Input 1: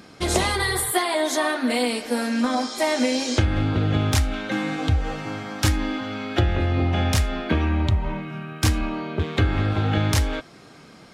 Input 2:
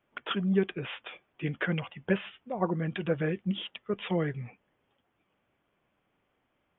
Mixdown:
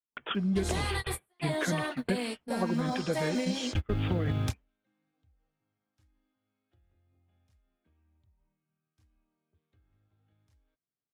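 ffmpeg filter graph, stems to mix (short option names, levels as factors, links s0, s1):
-filter_complex "[0:a]acrusher=bits=9:mode=log:mix=0:aa=0.000001,adelay=350,volume=0.316[s0];[1:a]agate=range=0.0224:threshold=0.00316:ratio=3:detection=peak,adynamicequalizer=threshold=0.00708:dfrequency=150:dqfactor=1.2:tfrequency=150:tqfactor=1.2:attack=5:release=100:ratio=0.375:range=2.5:mode=cutabove:tftype=bell,volume=0.841,asplit=2[s1][s2];[s2]apad=whole_len=506414[s3];[s0][s3]sidechaingate=range=0.00562:threshold=0.00501:ratio=16:detection=peak[s4];[s4][s1]amix=inputs=2:normalize=0,lowshelf=f=140:g=9,acompressor=threshold=0.0562:ratio=5"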